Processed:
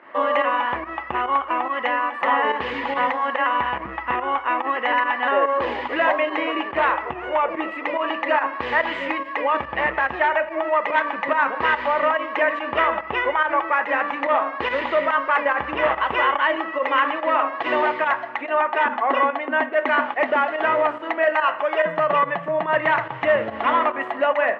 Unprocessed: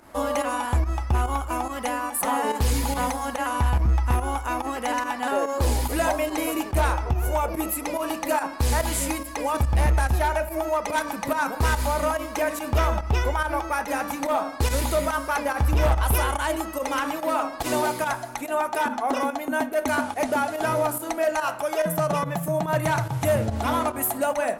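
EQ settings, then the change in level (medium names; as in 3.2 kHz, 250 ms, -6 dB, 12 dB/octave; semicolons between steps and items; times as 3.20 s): cabinet simulation 290–3000 Hz, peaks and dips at 370 Hz +3 dB, 550 Hz +5 dB, 1.1 kHz +10 dB, 1.9 kHz +10 dB, 2.9 kHz +8 dB; peaking EQ 1.8 kHz +3.5 dB 0.45 oct; 0.0 dB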